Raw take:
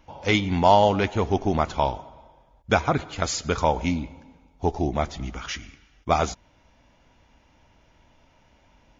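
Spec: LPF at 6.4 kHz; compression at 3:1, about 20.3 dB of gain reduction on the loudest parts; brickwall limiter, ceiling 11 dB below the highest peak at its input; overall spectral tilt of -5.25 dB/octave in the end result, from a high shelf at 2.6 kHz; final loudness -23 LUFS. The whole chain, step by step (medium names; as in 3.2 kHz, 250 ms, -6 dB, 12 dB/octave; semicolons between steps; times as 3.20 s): low-pass 6.4 kHz; treble shelf 2.6 kHz -6.5 dB; compression 3:1, threshold -41 dBFS; trim +22 dB; peak limiter -11 dBFS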